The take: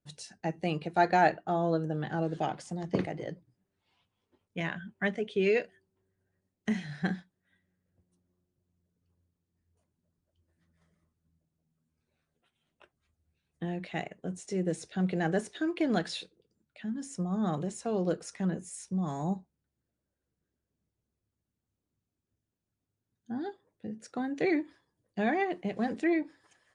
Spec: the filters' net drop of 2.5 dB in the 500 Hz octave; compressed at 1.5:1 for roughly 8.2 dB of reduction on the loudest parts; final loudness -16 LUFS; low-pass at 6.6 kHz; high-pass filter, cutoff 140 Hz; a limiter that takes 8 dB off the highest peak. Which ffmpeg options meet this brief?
-af "highpass=140,lowpass=6600,equalizer=f=500:t=o:g=-3.5,acompressor=threshold=0.00631:ratio=1.5,volume=20,alimiter=limit=0.631:level=0:latency=1"

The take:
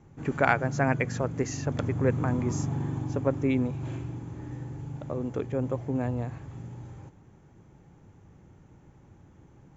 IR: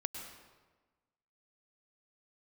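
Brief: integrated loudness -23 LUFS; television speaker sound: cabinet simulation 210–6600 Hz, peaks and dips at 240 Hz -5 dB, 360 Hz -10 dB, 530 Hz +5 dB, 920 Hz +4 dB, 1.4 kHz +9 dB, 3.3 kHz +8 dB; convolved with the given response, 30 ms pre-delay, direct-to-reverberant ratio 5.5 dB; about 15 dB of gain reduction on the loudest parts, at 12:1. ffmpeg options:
-filter_complex "[0:a]acompressor=threshold=0.02:ratio=12,asplit=2[s0][s1];[1:a]atrim=start_sample=2205,adelay=30[s2];[s1][s2]afir=irnorm=-1:irlink=0,volume=0.501[s3];[s0][s3]amix=inputs=2:normalize=0,highpass=f=210:w=0.5412,highpass=f=210:w=1.3066,equalizer=f=240:t=q:w=4:g=-5,equalizer=f=360:t=q:w=4:g=-10,equalizer=f=530:t=q:w=4:g=5,equalizer=f=920:t=q:w=4:g=4,equalizer=f=1400:t=q:w=4:g=9,equalizer=f=3300:t=q:w=4:g=8,lowpass=f=6600:w=0.5412,lowpass=f=6600:w=1.3066,volume=7.94"

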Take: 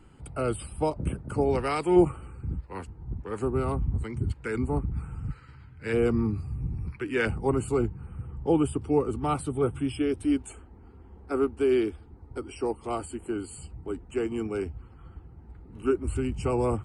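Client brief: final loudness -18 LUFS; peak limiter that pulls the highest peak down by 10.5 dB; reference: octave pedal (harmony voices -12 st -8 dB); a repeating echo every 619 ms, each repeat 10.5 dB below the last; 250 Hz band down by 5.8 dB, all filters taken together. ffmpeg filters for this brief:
-filter_complex "[0:a]equalizer=f=250:t=o:g=-8.5,alimiter=limit=0.0841:level=0:latency=1,aecho=1:1:619|1238|1857:0.299|0.0896|0.0269,asplit=2[s0][s1];[s1]asetrate=22050,aresample=44100,atempo=2,volume=0.398[s2];[s0][s2]amix=inputs=2:normalize=0,volume=5.96"

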